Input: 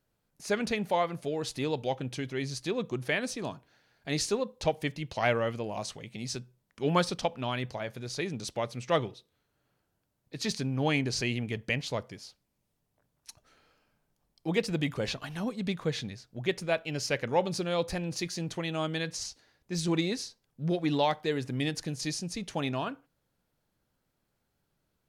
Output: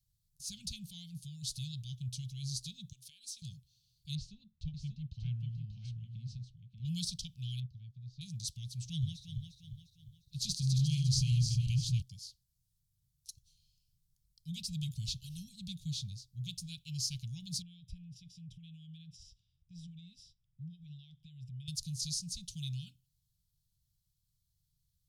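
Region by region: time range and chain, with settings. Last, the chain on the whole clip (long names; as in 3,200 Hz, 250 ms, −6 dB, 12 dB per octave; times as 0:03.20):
0:02.92–0:03.42: high-pass filter 580 Hz + downward compressor 5 to 1, threshold −39 dBFS
0:04.15–0:06.85: low-pass filter 1,700 Hz + single-tap delay 587 ms −5.5 dB
0:07.60–0:08.21: head-to-tape spacing loss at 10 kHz 38 dB + expander for the loud parts, over −48 dBFS
0:08.85–0:12.02: feedback delay that plays each chunk backwards 176 ms, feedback 65%, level −5.5 dB + low-shelf EQ 160 Hz +7.5 dB
0:17.62–0:21.68: downward compressor 3 to 1, threshold −40 dBFS + Savitzky-Golay smoothing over 25 samples
whole clip: inverse Chebyshev band-stop filter 280–2,000 Hz, stop band 40 dB; guitar amp tone stack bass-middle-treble 6-0-2; level +15 dB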